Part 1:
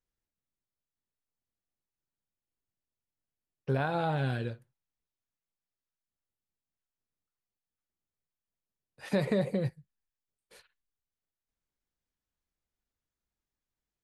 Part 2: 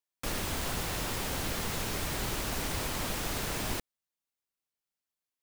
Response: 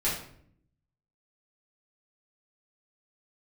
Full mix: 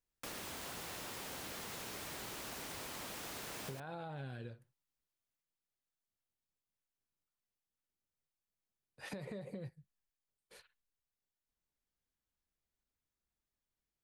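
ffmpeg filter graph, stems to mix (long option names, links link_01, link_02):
-filter_complex "[0:a]alimiter=level_in=0.5dB:limit=-24dB:level=0:latency=1:release=101,volume=-0.5dB,volume=-2.5dB[link_01];[1:a]highpass=frequency=250:poles=1,volume=-7dB[link_02];[link_01][link_02]amix=inputs=2:normalize=0,acompressor=threshold=-42dB:ratio=10"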